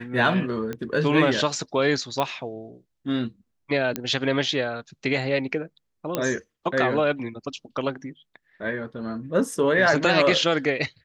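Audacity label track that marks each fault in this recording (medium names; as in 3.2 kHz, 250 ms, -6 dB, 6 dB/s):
0.730000	0.730000	pop -18 dBFS
2.200000	2.200000	pop -11 dBFS
3.960000	3.960000	pop -10 dBFS
6.150000	6.150000	pop -9 dBFS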